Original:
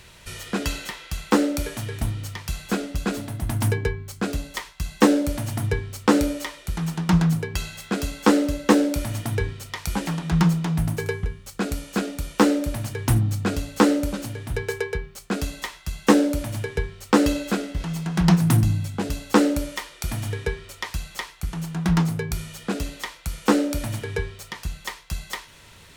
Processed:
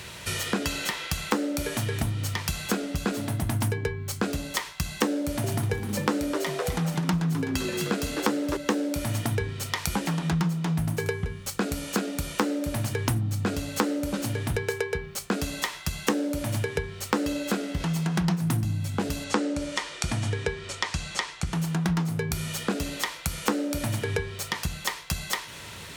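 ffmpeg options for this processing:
-filter_complex "[0:a]asettb=1/sr,asplit=3[a][b][c];[a]atrim=end=5.184[d];[b]atrim=start=5.18:end=8.57,asetpts=PTS-STARTPTS,afade=t=in:d=0.004:c=qsin,afade=t=out:st=3.386:d=0.004:c=qsin,asplit=6[e][f][g][h][i][j];[f]adelay=256,afreqshift=100,volume=-11dB[k];[g]adelay=512,afreqshift=200,volume=-17.9dB[l];[h]adelay=768,afreqshift=300,volume=-24.9dB[m];[i]adelay=1024,afreqshift=400,volume=-31.8dB[n];[j]adelay=1280,afreqshift=500,volume=-38.7dB[o];[e][k][l][m][n][o]amix=inputs=6:normalize=0,atrim=end_sample=149499[p];[c]atrim=start=8.566[q];[d][p]acrossfade=d=0.004:c1=hsin:c2=qsin[r];[r][q]acrossfade=d=0.004:c1=qsin:c2=hsin,asettb=1/sr,asplit=3[s][t][u];[s]atrim=end=19.244[v];[t]atrim=start=19.24:end=21.53,asetpts=PTS-STARTPTS,afade=t=in:d=0.004:c=qsin,afade=t=out:st=2.286:d=0.004:c=qsin,lowpass=f=8.7k:w=0.5412,lowpass=f=8.7k:w=1.3066[w];[u]atrim=start=21.526[x];[v][w]acrossfade=d=0.004:c1=hsin:c2=qsin[y];[y][x]acrossfade=d=0.004:c1=qsin:c2=hsin,highpass=78,acompressor=threshold=-33dB:ratio=5,volume=8dB"

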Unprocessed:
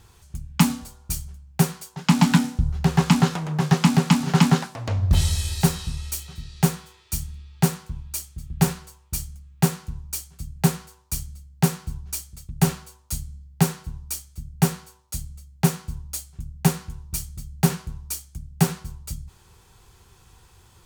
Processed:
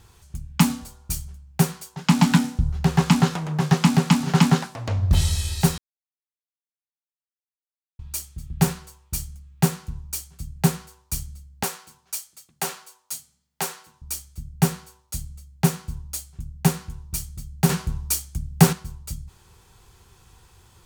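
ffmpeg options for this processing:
-filter_complex "[0:a]asettb=1/sr,asplit=3[a][b][c];[a]atrim=end=11.634[d];[b]atrim=start=11.63:end=14.02,asetpts=PTS-STARTPTS,afade=t=in:d=0.004:c=qsin,afade=t=out:st=2.386:d=0.004:c=qsin,highpass=550[e];[c]atrim=start=14.016[f];[d][e]acrossfade=d=0.004:c1=hsin:c2=qsin[g];[g][f]acrossfade=d=0.004:c1=qsin:c2=hsin,asettb=1/sr,asplit=3[h][i][j];[h]atrim=end=17.694[k];[i]atrim=start=17.69:end=18.73,asetpts=PTS-STARTPTS,afade=t=in:d=0.004:c=qsin,afade=t=out:st=1.036:d=0.004:c=qsin,acontrast=77[l];[j]atrim=start=18.726[m];[k][l]acrossfade=d=0.004:c1=hsin:c2=qsin[n];[n][m]acrossfade=d=0.004:c1=qsin:c2=hsin,asplit=3[o][p][q];[o]atrim=end=5.78,asetpts=PTS-STARTPTS,afade=t=out:st=5.776:d=0.004:c=hsin[r];[p]atrim=start=5.78:end=7.99,asetpts=PTS-STARTPTS,volume=0[s];[q]atrim=start=7.99,asetpts=PTS-STARTPTS,afade=t=in:d=0.004:c=hsin[t];[r][s][t]concat=n=3:v=0:a=1"

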